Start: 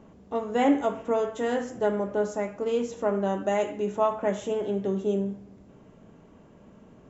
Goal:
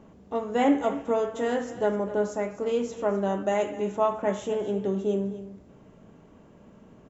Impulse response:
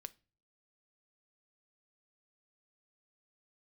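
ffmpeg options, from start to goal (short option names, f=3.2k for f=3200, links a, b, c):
-af "aecho=1:1:254:0.178"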